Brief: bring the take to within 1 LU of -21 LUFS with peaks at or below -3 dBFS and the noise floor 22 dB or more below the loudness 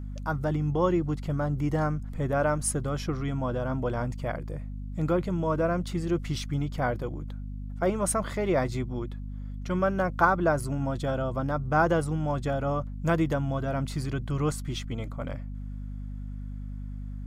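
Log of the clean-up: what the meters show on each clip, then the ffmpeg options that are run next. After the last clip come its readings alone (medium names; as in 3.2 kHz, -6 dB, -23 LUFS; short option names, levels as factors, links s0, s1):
hum 50 Hz; highest harmonic 250 Hz; hum level -34 dBFS; loudness -29.0 LUFS; peak level -8.5 dBFS; loudness target -21.0 LUFS
-> -af "bandreject=f=50:t=h:w=6,bandreject=f=100:t=h:w=6,bandreject=f=150:t=h:w=6,bandreject=f=200:t=h:w=6,bandreject=f=250:t=h:w=6"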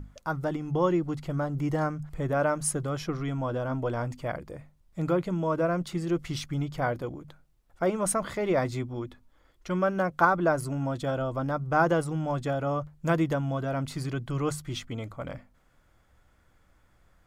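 hum not found; loudness -29.0 LUFS; peak level -8.5 dBFS; loudness target -21.0 LUFS
-> -af "volume=2.51,alimiter=limit=0.708:level=0:latency=1"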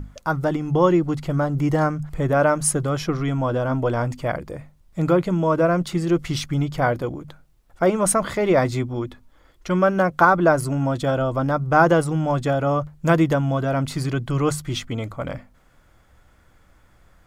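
loudness -21.5 LUFS; peak level -3.0 dBFS; noise floor -56 dBFS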